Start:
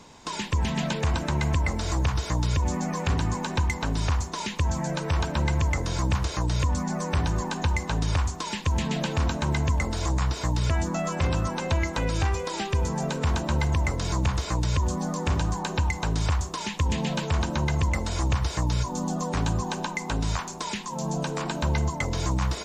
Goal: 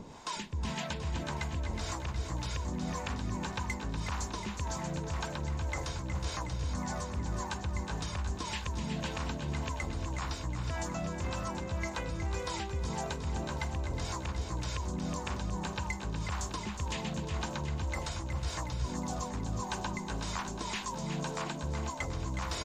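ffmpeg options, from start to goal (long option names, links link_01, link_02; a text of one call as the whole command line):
ffmpeg -i in.wav -filter_complex "[0:a]acrossover=split=1400[link_01][link_02];[link_01]acompressor=mode=upward:threshold=-39dB:ratio=2.5[link_03];[link_03][link_02]amix=inputs=2:normalize=0,acrossover=split=520[link_04][link_05];[link_04]aeval=exprs='val(0)*(1-0.7/2+0.7/2*cos(2*PI*1.8*n/s))':channel_layout=same[link_06];[link_05]aeval=exprs='val(0)*(1-0.7/2-0.7/2*cos(2*PI*1.8*n/s))':channel_layout=same[link_07];[link_06][link_07]amix=inputs=2:normalize=0,areverse,acompressor=threshold=-33dB:ratio=6,areverse,aecho=1:1:366|732|1098|1464|1830|2196|2562:0.398|0.235|0.139|0.0818|0.0482|0.0285|0.0168" out.wav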